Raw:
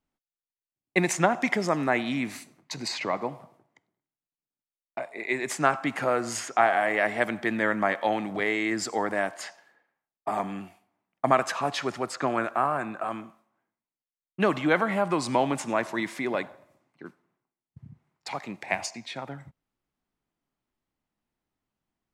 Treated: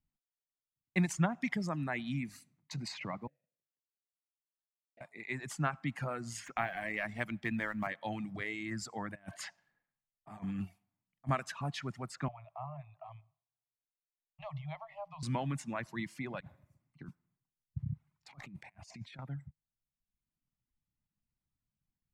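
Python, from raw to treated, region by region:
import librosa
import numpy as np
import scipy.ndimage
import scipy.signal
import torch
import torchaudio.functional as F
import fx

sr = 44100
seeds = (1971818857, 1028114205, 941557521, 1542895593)

y = fx.chain(x, sr, fx.median_filter(points=41),
    fx.vowel_filter(vowel='e'), at=(3.27, 5.01))
y = fx.chain(y, sr, fx.law_mismatch(coded='A'),
    fx.peak_eq(hz=2400.0, db=4.5, octaves=0.43),
    fx.band_squash(depth_pct=40), at=(6.46, 7.87))
y = fx.chain(y, sr, fx.low_shelf(hz=88.0, db=7.0),
    fx.over_compress(threshold_db=-36.0, ratio=-1.0), at=(9.15, 11.29))
y = fx.chain(y, sr, fx.cheby1_bandstop(low_hz=150.0, high_hz=610.0, order=5),
    fx.air_absorb(metres=300.0),
    fx.fixed_phaser(hz=630.0, stages=4), at=(12.28, 15.23))
y = fx.chain(y, sr, fx.low_shelf(hz=71.0, db=10.0),
    fx.over_compress(threshold_db=-44.0, ratio=-1.0), at=(16.4, 19.19))
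y = fx.high_shelf(y, sr, hz=2700.0, db=-9.0)
y = fx.dereverb_blind(y, sr, rt60_s=1.0)
y = fx.curve_eq(y, sr, hz=(150.0, 410.0, 2600.0, 10000.0), db=(0, -20, -9, -6))
y = y * 10.0 ** (3.5 / 20.0)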